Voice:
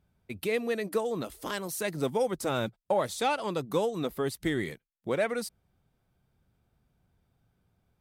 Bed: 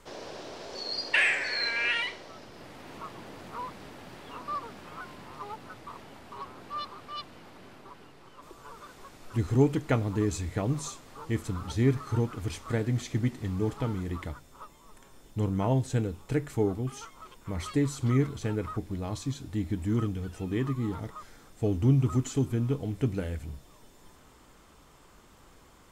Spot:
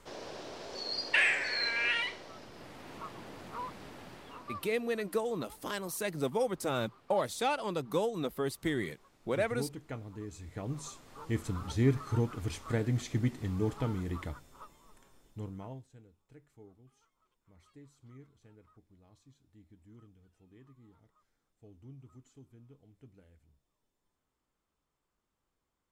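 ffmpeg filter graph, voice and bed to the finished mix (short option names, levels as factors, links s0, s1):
-filter_complex "[0:a]adelay=4200,volume=0.708[s0];[1:a]volume=3.35,afade=t=out:st=4.02:d=0.76:silence=0.223872,afade=t=in:st=10.34:d=1.06:silence=0.223872,afade=t=out:st=14.28:d=1.6:silence=0.0501187[s1];[s0][s1]amix=inputs=2:normalize=0"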